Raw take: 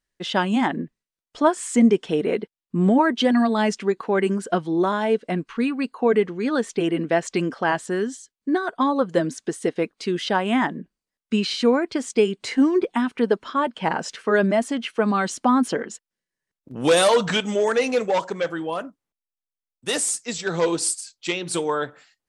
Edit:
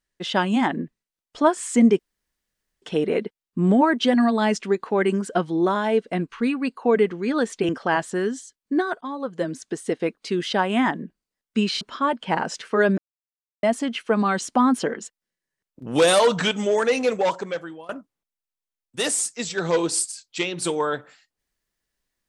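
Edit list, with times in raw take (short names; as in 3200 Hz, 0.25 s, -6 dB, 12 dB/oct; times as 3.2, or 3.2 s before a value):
1.99 insert room tone 0.83 s
6.86–7.45 cut
8.77–10.27 fade in equal-power, from -13.5 dB
11.57–13.35 cut
14.52 insert silence 0.65 s
18.21–18.78 fade out, to -21 dB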